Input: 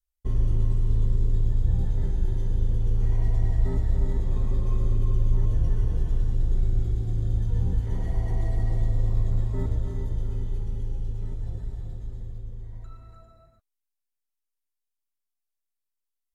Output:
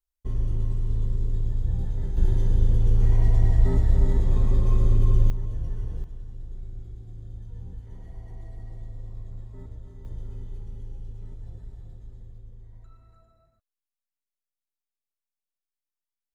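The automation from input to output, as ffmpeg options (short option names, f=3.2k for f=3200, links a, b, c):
-af "asetnsamples=n=441:p=0,asendcmd='2.17 volume volume 4dB;5.3 volume volume -7dB;6.04 volume volume -14.5dB;10.05 volume volume -8dB',volume=-3dB"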